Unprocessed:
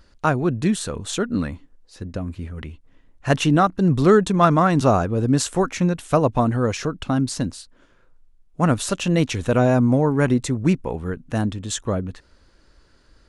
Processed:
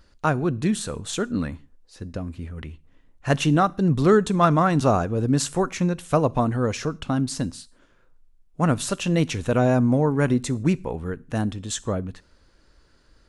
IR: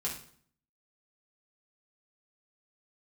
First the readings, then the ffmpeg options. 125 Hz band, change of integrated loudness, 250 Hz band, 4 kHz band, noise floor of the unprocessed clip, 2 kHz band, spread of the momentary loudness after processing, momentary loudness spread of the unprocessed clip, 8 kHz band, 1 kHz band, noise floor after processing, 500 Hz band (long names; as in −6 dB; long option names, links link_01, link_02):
−2.0 dB, −2.5 dB, −2.5 dB, −2.5 dB, −57 dBFS, −2.5 dB, 15 LU, 14 LU, −2.0 dB, −2.5 dB, −59 dBFS, −2.5 dB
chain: -filter_complex "[0:a]asplit=2[link_01][link_02];[1:a]atrim=start_sample=2205,afade=type=out:start_time=0.22:duration=0.01,atrim=end_sample=10143,highshelf=frequency=4900:gain=11[link_03];[link_02][link_03]afir=irnorm=-1:irlink=0,volume=-22dB[link_04];[link_01][link_04]amix=inputs=2:normalize=0,volume=-3dB"